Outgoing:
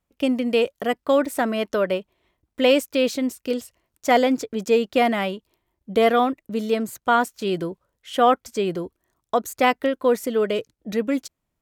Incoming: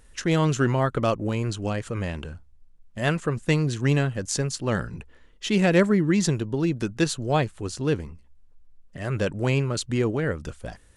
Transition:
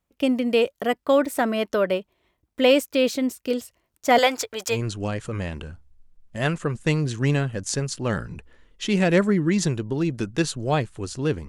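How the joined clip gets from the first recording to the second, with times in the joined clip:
outgoing
4.18–4.78 s: FFT filter 100 Hz 0 dB, 150 Hz -21 dB, 860 Hz +8 dB
4.73 s: go over to incoming from 1.35 s, crossfade 0.10 s

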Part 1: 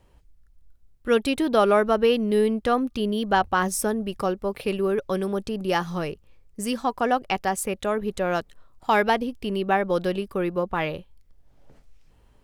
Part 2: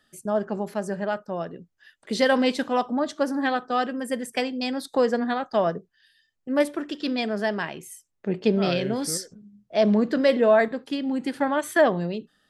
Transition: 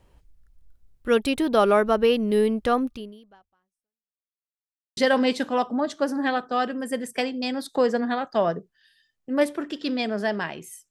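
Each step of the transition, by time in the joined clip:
part 1
2.86–4.30 s: fade out exponential
4.30–4.97 s: mute
4.97 s: go over to part 2 from 2.16 s

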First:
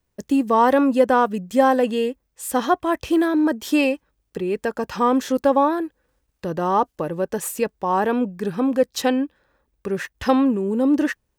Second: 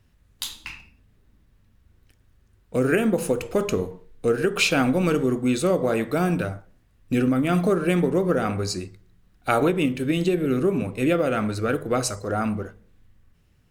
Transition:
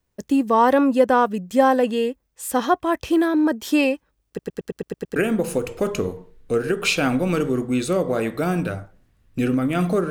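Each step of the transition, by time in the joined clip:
first
4.28 s: stutter in place 0.11 s, 8 plays
5.16 s: go over to second from 2.90 s

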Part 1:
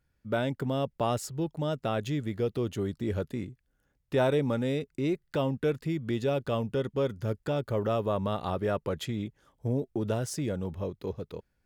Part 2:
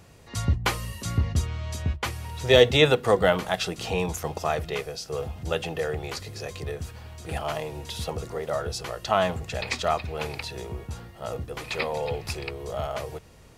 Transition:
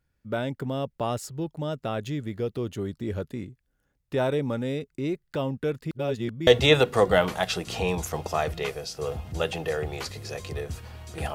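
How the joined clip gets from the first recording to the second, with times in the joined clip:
part 1
5.91–6.47 s: reverse
6.47 s: go over to part 2 from 2.58 s

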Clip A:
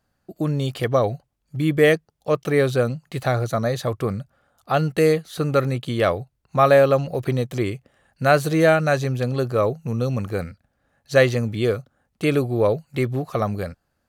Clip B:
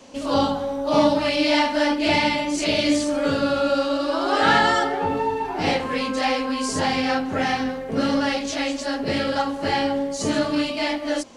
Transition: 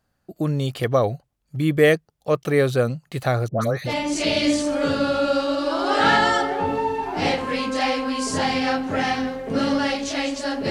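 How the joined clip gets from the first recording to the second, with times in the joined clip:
clip A
3.48–3.95 s: phase dispersion highs, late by 139 ms, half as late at 1.5 kHz
3.90 s: go over to clip B from 2.32 s, crossfade 0.10 s

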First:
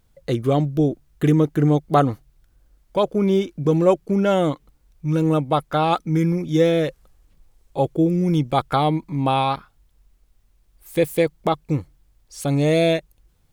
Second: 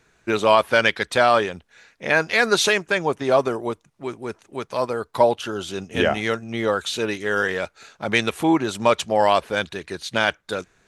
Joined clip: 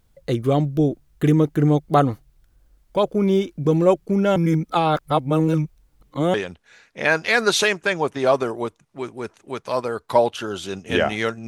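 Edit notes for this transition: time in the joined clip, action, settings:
first
4.36–6.34 s: reverse
6.34 s: go over to second from 1.39 s

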